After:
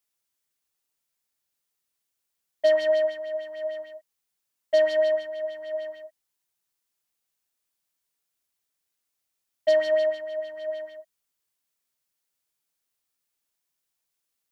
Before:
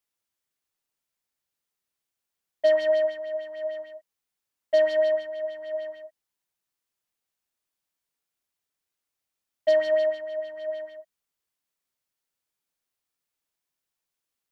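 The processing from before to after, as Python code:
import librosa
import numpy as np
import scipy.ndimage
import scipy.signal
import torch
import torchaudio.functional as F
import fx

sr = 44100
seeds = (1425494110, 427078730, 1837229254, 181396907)

y = fx.high_shelf(x, sr, hz=4000.0, db=5.5)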